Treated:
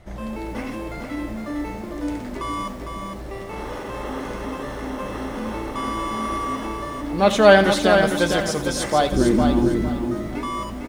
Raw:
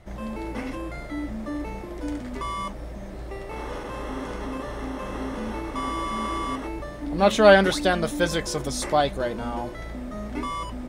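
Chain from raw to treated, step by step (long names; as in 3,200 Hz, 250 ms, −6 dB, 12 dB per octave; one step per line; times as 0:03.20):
0:09.12–0:09.89: low shelf with overshoot 440 Hz +9.5 dB, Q 3
on a send: repeating echo 455 ms, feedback 26%, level −6 dB
on the sum: feedback echo at a low word length 86 ms, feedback 55%, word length 7 bits, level −14 dB
level +2 dB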